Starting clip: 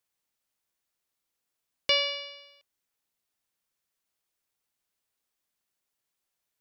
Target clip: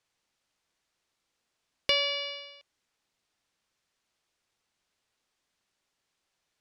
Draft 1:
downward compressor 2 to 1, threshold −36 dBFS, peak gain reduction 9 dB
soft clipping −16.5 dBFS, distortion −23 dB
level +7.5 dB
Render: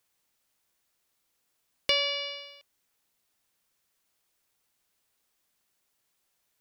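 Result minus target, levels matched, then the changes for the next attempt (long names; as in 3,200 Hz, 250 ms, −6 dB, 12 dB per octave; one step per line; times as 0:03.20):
8,000 Hz band +2.5 dB
add after downward compressor: low-pass filter 6,300 Hz 12 dB per octave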